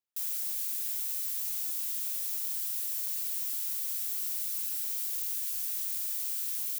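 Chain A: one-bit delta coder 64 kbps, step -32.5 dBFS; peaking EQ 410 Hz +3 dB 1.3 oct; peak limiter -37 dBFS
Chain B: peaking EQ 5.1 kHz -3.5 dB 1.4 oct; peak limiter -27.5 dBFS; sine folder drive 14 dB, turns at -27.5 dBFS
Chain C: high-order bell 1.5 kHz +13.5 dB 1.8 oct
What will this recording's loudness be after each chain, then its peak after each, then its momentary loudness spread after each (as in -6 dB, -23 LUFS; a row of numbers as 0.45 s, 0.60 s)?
-43.0 LUFS, -31.0 LUFS, -30.0 LUFS; -37.0 dBFS, -24.5 dBFS, -20.5 dBFS; 0 LU, 0 LU, 0 LU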